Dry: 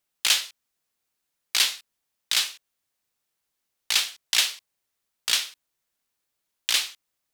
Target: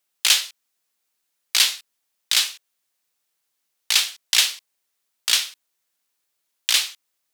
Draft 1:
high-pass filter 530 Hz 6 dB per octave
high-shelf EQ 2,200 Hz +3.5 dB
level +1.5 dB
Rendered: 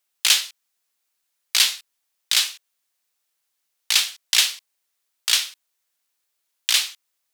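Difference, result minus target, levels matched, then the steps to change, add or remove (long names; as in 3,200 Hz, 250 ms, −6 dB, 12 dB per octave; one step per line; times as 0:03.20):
250 Hz band −4.0 dB
change: high-pass filter 240 Hz 6 dB per octave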